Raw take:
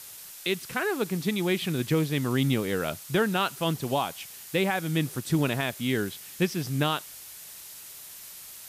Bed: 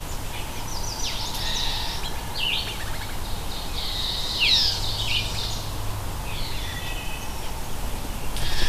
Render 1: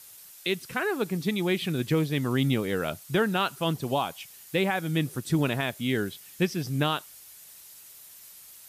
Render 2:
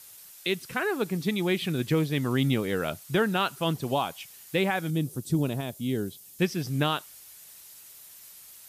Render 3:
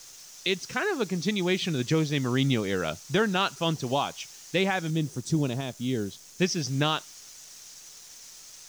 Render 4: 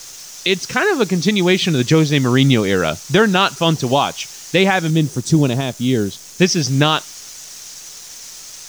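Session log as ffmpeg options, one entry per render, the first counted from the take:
ffmpeg -i in.wav -af "afftdn=noise_reduction=7:noise_floor=-45" out.wav
ffmpeg -i in.wav -filter_complex "[0:a]asettb=1/sr,asplit=3[link_01][link_02][link_03];[link_01]atrim=end=4.904[link_04];[link_02]atrim=start=4.9:end=6.39,asetpts=PTS-STARTPTS,afade=type=in:duration=0.004:curve=qsin,afade=type=out:start_time=1.486:duration=0.004:curve=qsin,equalizer=frequency=1800:width=0.68:gain=-14[link_05];[link_03]atrim=start=6.386[link_06];[link_04][link_05]acrossfade=duration=0.004:curve1=hsin:curve2=qsin[link_07];[link_07][link_06]acrossfade=duration=0.004:curve1=qsin:curve2=hsin" out.wav
ffmpeg -i in.wav -af "lowpass=frequency=6100:width_type=q:width=3.9,acrusher=bits=9:dc=4:mix=0:aa=0.000001" out.wav
ffmpeg -i in.wav -af "volume=12dB,alimiter=limit=-3dB:level=0:latency=1" out.wav

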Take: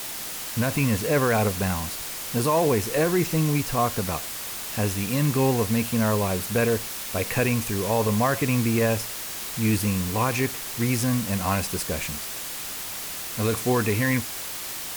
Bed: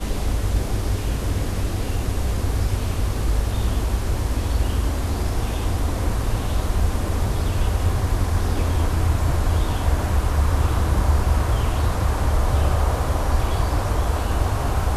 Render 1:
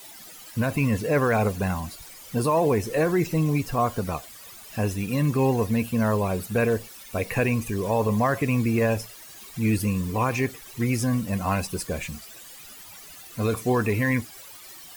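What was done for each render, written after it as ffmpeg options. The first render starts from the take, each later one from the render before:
ffmpeg -i in.wav -af "afftdn=noise_reduction=15:noise_floor=-34" out.wav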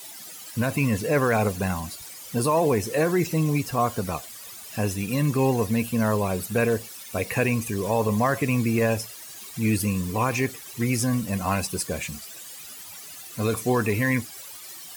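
ffmpeg -i in.wav -af "highpass=74,equalizer=frequency=8900:width=0.4:gain=5" out.wav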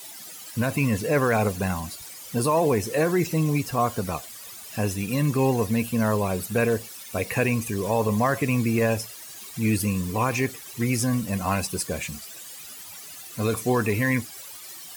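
ffmpeg -i in.wav -af anull out.wav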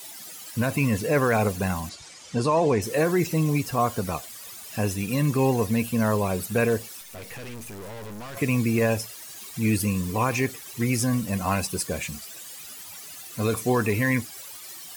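ffmpeg -i in.wav -filter_complex "[0:a]asettb=1/sr,asplit=3[link_01][link_02][link_03];[link_01]atrim=end=1.894[link_04];[link_02]atrim=start=1.89:end=2.82,asetpts=PTS-STARTPTS,afade=type=in:duration=0.004:curve=qsin,afade=type=out:start_time=0.926:duration=0.004:curve=qsin,lowpass=frequency=7400:width=0.5412,lowpass=frequency=7400:width=1.3066[link_05];[link_03]atrim=start=2.816[link_06];[link_04][link_05]acrossfade=duration=0.004:curve1=hsin:curve2=qsin[link_07];[link_07][link_06]acrossfade=duration=0.004:curve1=qsin:curve2=hsin,asettb=1/sr,asplit=3[link_08][link_09][link_10];[link_08]atrim=end=7.014[link_11];[link_09]atrim=start=7.01:end=8.37,asetpts=PTS-STARTPTS,afade=type=in:duration=0.004:curve=qsin,afade=type=out:start_time=1.356:duration=0.004:curve=qsin,aeval=exprs='(tanh(70.8*val(0)+0.65)-tanh(0.65))/70.8':channel_layout=same[link_12];[link_10]atrim=start=8.366[link_13];[link_11][link_12]acrossfade=duration=0.004:curve1=hsin:curve2=qsin[link_14];[link_14][link_13]acrossfade=duration=0.004:curve1=qsin:curve2=hsin" out.wav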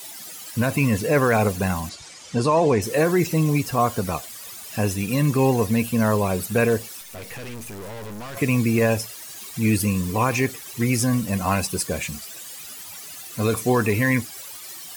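ffmpeg -i in.wav -af "volume=3dB" out.wav

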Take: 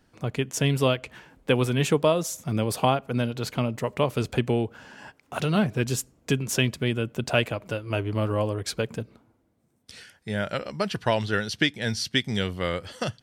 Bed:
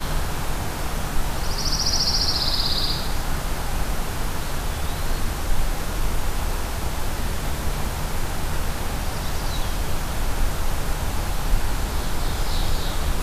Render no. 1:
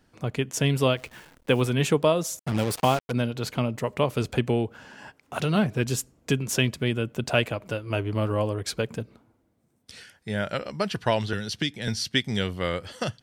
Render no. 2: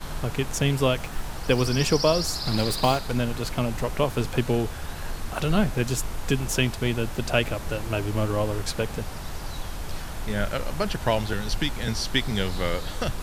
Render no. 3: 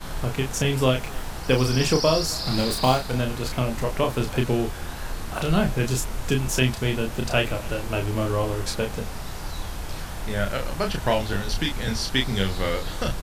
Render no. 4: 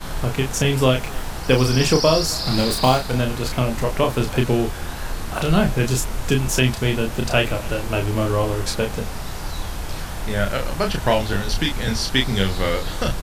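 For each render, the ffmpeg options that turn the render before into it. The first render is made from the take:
ffmpeg -i in.wav -filter_complex "[0:a]asplit=3[link_01][link_02][link_03];[link_01]afade=type=out:start_time=0.96:duration=0.02[link_04];[link_02]acrusher=bits=9:dc=4:mix=0:aa=0.000001,afade=type=in:start_time=0.96:duration=0.02,afade=type=out:start_time=1.61:duration=0.02[link_05];[link_03]afade=type=in:start_time=1.61:duration=0.02[link_06];[link_04][link_05][link_06]amix=inputs=3:normalize=0,asettb=1/sr,asplit=3[link_07][link_08][link_09];[link_07]atrim=end=2.394[link_10];[link_08]atrim=start=2.39:end=3.12,asetpts=PTS-STARTPTS,afade=type=in:duration=0.004:curve=qsin,afade=type=out:start_time=0.726:duration=0.004:curve=qsin,acrusher=bits=4:mix=0:aa=0.5[link_11];[link_09]atrim=start=3.116[link_12];[link_10][link_11]acrossfade=duration=0.004:curve1=hsin:curve2=qsin[link_13];[link_13][link_12]acrossfade=duration=0.004:curve1=qsin:curve2=hsin,asettb=1/sr,asplit=3[link_14][link_15][link_16];[link_14]atrim=end=11.334[link_17];[link_15]atrim=start=11.33:end=11.88,asetpts=PTS-STARTPTS,afade=type=in:duration=0.004:curve=qsin,afade=type=out:start_time=0.546:duration=0.004:curve=qsin,acrossover=split=290|3000[link_18][link_19][link_20];[link_19]acompressor=threshold=-33dB:ratio=6:attack=3.2:release=140:knee=2.83:detection=peak[link_21];[link_18][link_21][link_20]amix=inputs=3:normalize=0[link_22];[link_16]atrim=start=11.876[link_23];[link_17][link_22]acrossfade=duration=0.004:curve1=hsin:curve2=qsin[link_24];[link_24][link_23]acrossfade=duration=0.004:curve1=qsin:curve2=hsin" out.wav
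ffmpeg -i in.wav -i bed.wav -filter_complex "[1:a]volume=-8.5dB[link_01];[0:a][link_01]amix=inputs=2:normalize=0" out.wav
ffmpeg -i in.wav -filter_complex "[0:a]asplit=2[link_01][link_02];[link_02]adelay=31,volume=-4.5dB[link_03];[link_01][link_03]amix=inputs=2:normalize=0,aecho=1:1:273:0.0668" out.wav
ffmpeg -i in.wav -af "volume=4dB,alimiter=limit=-2dB:level=0:latency=1" out.wav

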